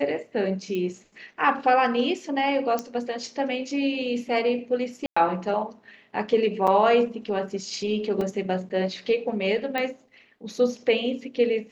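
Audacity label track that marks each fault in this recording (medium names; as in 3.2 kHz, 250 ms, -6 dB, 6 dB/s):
0.750000	0.750000	pop -19 dBFS
2.790000	2.790000	pop -14 dBFS
5.060000	5.170000	dropout 105 ms
6.670000	6.680000	dropout 5.3 ms
8.210000	8.210000	dropout 3.1 ms
9.780000	9.780000	pop -14 dBFS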